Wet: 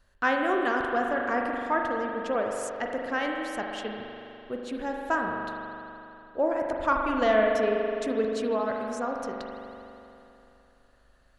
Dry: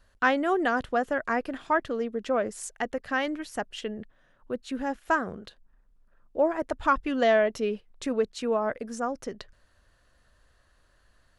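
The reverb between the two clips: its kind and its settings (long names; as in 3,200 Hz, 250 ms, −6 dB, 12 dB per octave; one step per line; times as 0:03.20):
spring reverb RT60 3 s, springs 41 ms, chirp 40 ms, DRR 0.5 dB
level −2.5 dB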